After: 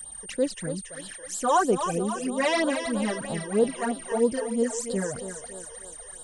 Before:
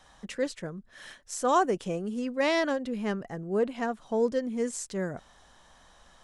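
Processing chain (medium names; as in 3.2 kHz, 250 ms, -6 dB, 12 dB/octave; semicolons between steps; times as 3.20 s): whistle 8.8 kHz -40 dBFS; thinning echo 278 ms, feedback 69%, high-pass 350 Hz, level -7.5 dB; phase shifter stages 12, 3.1 Hz, lowest notch 220–2100 Hz; trim +5 dB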